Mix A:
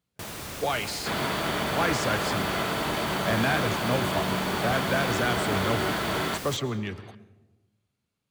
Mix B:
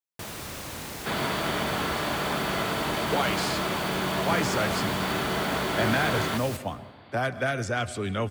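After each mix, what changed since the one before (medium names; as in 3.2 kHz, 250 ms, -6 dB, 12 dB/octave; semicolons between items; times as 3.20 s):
speech: entry +2.50 s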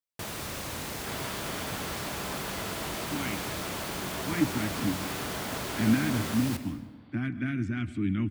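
speech: add FFT filter 140 Hz 0 dB, 310 Hz +9 dB, 480 Hz -29 dB, 2.2 kHz -4 dB, 4.6 kHz -20 dB; first sound: send +6.0 dB; second sound -10.5 dB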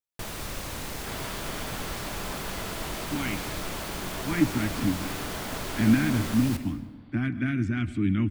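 speech +3.5 dB; master: remove high-pass 74 Hz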